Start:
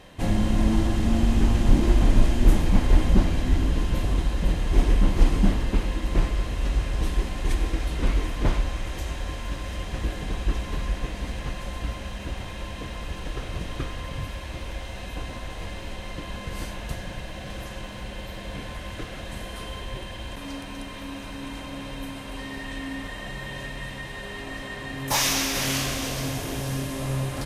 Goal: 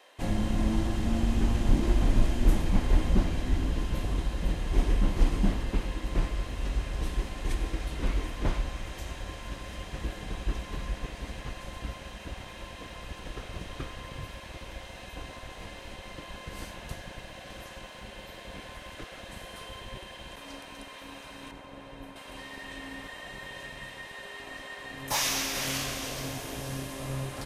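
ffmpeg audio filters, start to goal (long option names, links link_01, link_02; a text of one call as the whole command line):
ffmpeg -i in.wav -filter_complex "[0:a]asettb=1/sr,asplit=3[link_01][link_02][link_03];[link_01]atrim=end=21.514[link_04];[link_02]atrim=start=21.51:end=22.16,asetpts=PTS-STARTPTS,afade=type=in:duration=0.004:curve=qsin,afade=type=out:start_time=0.646:duration=0.004:curve=qsin,highshelf=frequency=2100:gain=-11[link_05];[link_03]atrim=start=22.156[link_06];[link_04][link_05]acrossfade=duration=0.004:curve1=hsin:curve2=qsin[link_07];[link_07][link_06]acrossfade=duration=0.004:curve1=qsin:curve2=hsin,acrossover=split=390|1500|6300[link_08][link_09][link_10][link_11];[link_08]aeval=exprs='sgn(val(0))*max(abs(val(0))-0.0126,0)':channel_layout=same[link_12];[link_12][link_09][link_10][link_11]amix=inputs=4:normalize=0,volume=-5dB" out.wav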